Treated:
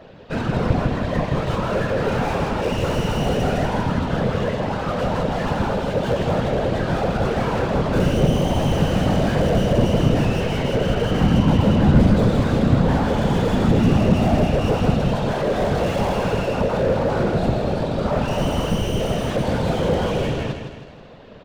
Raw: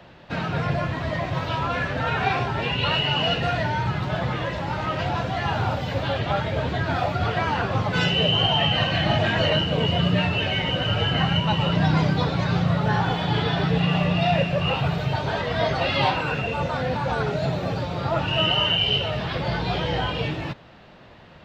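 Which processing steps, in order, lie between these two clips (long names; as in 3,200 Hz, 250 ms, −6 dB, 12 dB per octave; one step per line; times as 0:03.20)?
stylus tracing distortion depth 0.17 ms
thirty-one-band graphic EQ 160 Hz +9 dB, 500 Hz +12 dB, 2,000 Hz −3 dB
random phases in short frames
0:10.40–0:12.00: low-pass filter 3,900 Hz 12 dB per octave
repeating echo 160 ms, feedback 48%, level −7.5 dB
slew-rate limiting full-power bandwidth 79 Hz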